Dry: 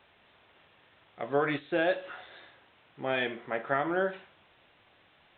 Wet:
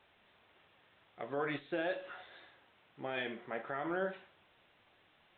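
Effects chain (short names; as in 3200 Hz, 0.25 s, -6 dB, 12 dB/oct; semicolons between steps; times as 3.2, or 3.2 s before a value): limiter -21 dBFS, peak gain reduction 8 dB; flange 1.6 Hz, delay 2.1 ms, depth 3.6 ms, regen +79%; on a send: reverb RT60 0.45 s, pre-delay 5 ms, DRR 20 dB; on the sum: gain -1 dB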